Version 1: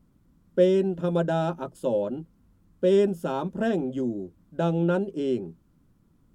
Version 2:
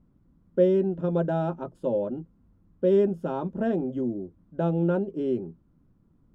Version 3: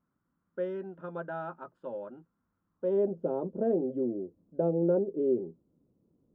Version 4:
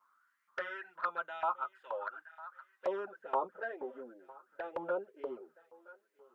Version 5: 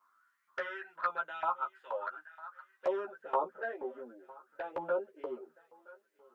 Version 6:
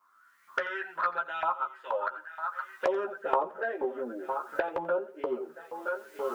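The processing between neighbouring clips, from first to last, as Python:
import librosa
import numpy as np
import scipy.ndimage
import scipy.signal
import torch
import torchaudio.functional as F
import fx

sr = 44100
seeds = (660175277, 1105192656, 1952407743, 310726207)

y1 = fx.lowpass(x, sr, hz=1000.0, slope=6)
y2 = fx.filter_sweep_bandpass(y1, sr, from_hz=1400.0, to_hz=480.0, start_s=2.67, end_s=3.18, q=2.3)
y2 = fx.low_shelf(y2, sr, hz=290.0, db=10.0)
y3 = fx.echo_thinned(y2, sr, ms=970, feedback_pct=45, hz=580.0, wet_db=-20.0)
y3 = fx.filter_lfo_highpass(y3, sr, shape='saw_up', hz=2.1, low_hz=990.0, high_hz=2200.0, q=5.3)
y3 = fx.env_flanger(y3, sr, rest_ms=10.5, full_db=-35.5)
y3 = y3 * 10.0 ** (9.0 / 20.0)
y4 = fx.doubler(y3, sr, ms=13.0, db=-5.0)
y5 = fx.recorder_agc(y4, sr, target_db=-25.0, rise_db_per_s=28.0, max_gain_db=30)
y5 = fx.echo_feedback(y5, sr, ms=87, feedback_pct=34, wet_db=-18)
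y5 = y5 * 10.0 ** (3.0 / 20.0)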